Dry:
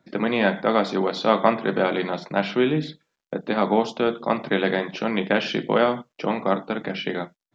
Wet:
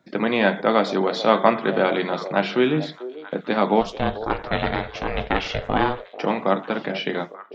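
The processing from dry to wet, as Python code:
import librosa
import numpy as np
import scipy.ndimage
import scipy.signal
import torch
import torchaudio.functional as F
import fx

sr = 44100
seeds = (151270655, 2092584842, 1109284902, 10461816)

y = fx.low_shelf(x, sr, hz=140.0, db=-5.0)
y = fx.ring_mod(y, sr, carrier_hz=250.0, at=(3.81, 6.09))
y = fx.echo_stepped(y, sr, ms=442, hz=520.0, octaves=1.4, feedback_pct=70, wet_db=-11)
y = y * 10.0 ** (2.0 / 20.0)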